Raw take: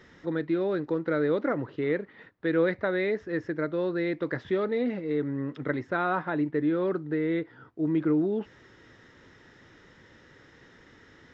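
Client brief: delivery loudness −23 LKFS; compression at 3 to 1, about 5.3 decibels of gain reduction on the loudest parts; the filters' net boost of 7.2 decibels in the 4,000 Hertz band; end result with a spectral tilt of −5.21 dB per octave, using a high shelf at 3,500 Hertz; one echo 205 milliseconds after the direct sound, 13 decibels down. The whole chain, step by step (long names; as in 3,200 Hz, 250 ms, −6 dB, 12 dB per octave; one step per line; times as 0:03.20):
high-shelf EQ 3,500 Hz +6 dB
parametric band 4,000 Hz +4.5 dB
downward compressor 3 to 1, threshold −28 dBFS
single-tap delay 205 ms −13 dB
level +9 dB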